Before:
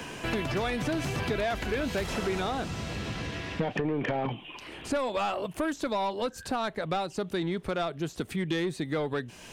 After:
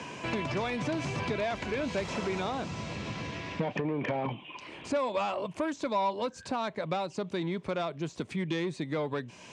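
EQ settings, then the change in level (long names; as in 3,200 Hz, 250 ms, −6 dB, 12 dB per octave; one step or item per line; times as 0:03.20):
loudspeaker in its box 110–7,400 Hz, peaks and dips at 580 Hz +5 dB, 1,000 Hz +9 dB, 2,300 Hz +6 dB
low-shelf EQ 390 Hz +8 dB
high-shelf EQ 3,700 Hz +7 dB
−7.5 dB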